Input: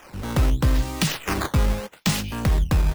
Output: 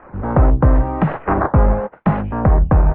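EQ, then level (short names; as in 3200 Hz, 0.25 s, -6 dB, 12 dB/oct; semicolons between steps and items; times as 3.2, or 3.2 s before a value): LPF 1600 Hz 24 dB/oct; dynamic EQ 700 Hz, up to +8 dB, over -44 dBFS, Q 1.2; air absorption 200 m; +7.0 dB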